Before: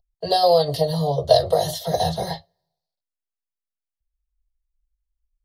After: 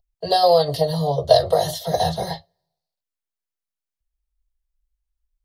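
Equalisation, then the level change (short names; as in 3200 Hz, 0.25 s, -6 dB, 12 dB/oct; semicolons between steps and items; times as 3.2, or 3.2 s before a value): dynamic EQ 1400 Hz, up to +4 dB, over -29 dBFS, Q 0.88; 0.0 dB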